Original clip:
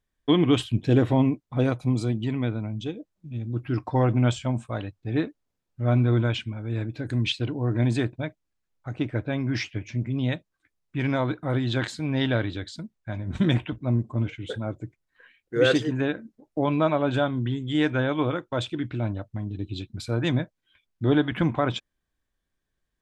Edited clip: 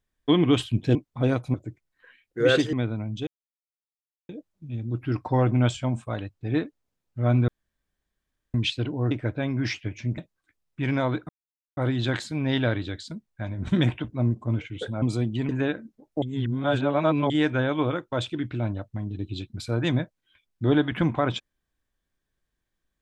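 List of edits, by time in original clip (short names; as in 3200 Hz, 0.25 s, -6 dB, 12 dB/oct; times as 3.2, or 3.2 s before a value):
0.95–1.31 cut
1.9–2.37 swap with 14.7–15.89
2.91 insert silence 1.02 s
6.1–7.16 room tone
7.73–9.01 cut
10.08–10.34 cut
11.45 insert silence 0.48 s
16.62–17.7 reverse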